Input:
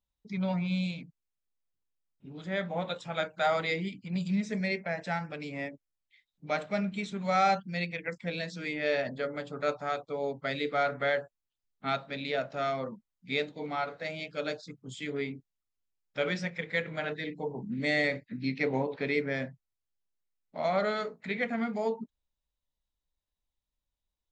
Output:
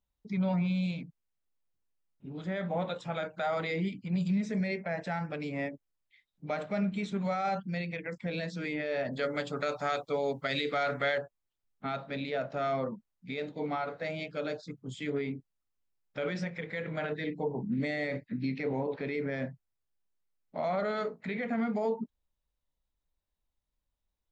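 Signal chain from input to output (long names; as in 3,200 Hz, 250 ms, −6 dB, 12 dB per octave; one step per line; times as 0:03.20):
brickwall limiter −26 dBFS, peak gain reduction 11 dB
high-shelf EQ 2,200 Hz −7.5 dB, from 0:09.13 +6 dB, from 0:11.18 −8 dB
level +3.5 dB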